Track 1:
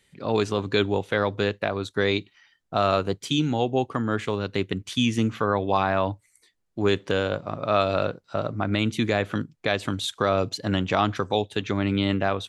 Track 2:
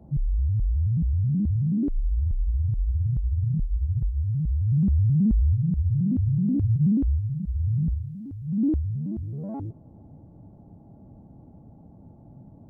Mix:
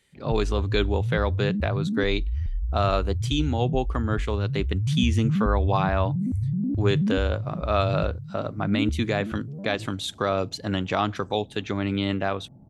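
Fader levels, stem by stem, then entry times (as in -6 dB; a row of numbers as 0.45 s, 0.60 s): -2.0 dB, -3.0 dB; 0.00 s, 0.15 s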